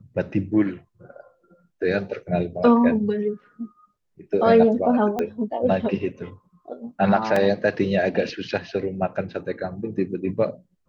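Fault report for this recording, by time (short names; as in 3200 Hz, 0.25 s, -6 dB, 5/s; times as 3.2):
5.19 pop -13 dBFS
7.36 gap 3.6 ms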